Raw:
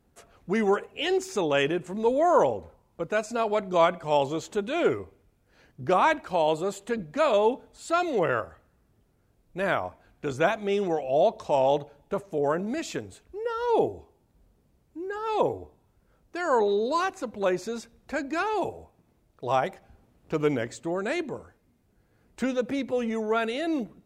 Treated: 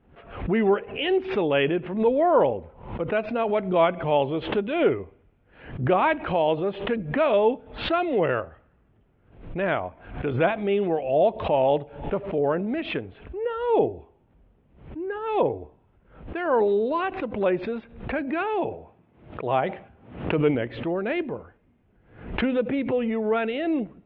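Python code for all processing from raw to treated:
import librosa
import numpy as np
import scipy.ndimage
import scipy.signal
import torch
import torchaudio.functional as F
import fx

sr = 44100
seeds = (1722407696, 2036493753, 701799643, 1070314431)

y = fx.chain(x, sr, fx.highpass(hz=84.0, slope=12),
    fx.sustainer(db_per_s=130.0), at=(18.21, 20.55))
y = scipy.signal.sosfilt(scipy.signal.butter(8, 3200.0, 'lowpass', fs=sr, output='sos'), y)
y = fx.dynamic_eq(y, sr, hz=1200.0, q=0.96, threshold_db=-39.0, ratio=4.0, max_db=-5)
y = fx.pre_swell(y, sr, db_per_s=100.0)
y = y * 10.0 ** (3.5 / 20.0)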